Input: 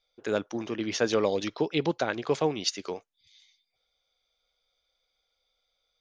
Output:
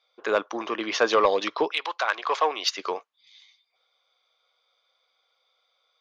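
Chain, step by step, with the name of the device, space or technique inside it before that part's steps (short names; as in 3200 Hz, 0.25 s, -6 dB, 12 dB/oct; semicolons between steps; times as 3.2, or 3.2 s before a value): intercom (BPF 480–4300 Hz; bell 1100 Hz +10 dB 0.41 oct; soft clip -16 dBFS, distortion -20 dB); 1.71–2.77 HPF 1400 Hz -> 360 Hz 12 dB/oct; gain +7.5 dB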